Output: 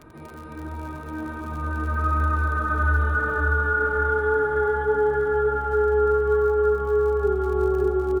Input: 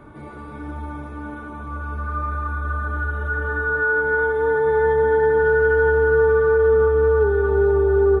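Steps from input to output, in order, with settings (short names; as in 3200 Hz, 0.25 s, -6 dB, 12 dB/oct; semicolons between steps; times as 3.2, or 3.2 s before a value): Doppler pass-by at 3.3, 20 m/s, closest 25 m; crackle 50/s -39 dBFS; vocal rider within 5 dB 0.5 s; on a send: feedback echo 0.577 s, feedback 46%, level -4 dB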